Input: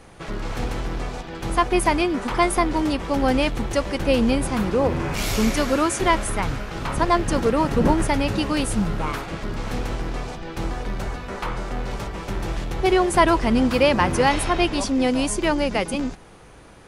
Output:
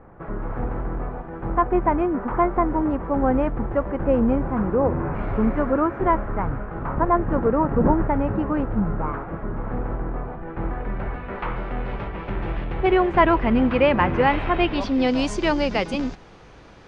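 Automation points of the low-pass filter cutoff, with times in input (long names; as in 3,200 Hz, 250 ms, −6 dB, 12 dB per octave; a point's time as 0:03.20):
low-pass filter 24 dB per octave
0:10.24 1,500 Hz
0:11.49 2,700 Hz
0:14.50 2,700 Hz
0:15.25 6,000 Hz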